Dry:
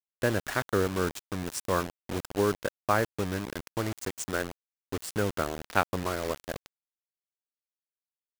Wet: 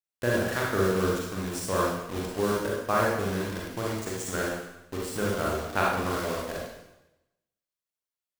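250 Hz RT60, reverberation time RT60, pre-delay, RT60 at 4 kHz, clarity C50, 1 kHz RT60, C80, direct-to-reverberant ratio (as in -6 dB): 0.95 s, 0.90 s, 33 ms, 0.90 s, -1.0 dB, 0.90 s, 3.0 dB, -4.0 dB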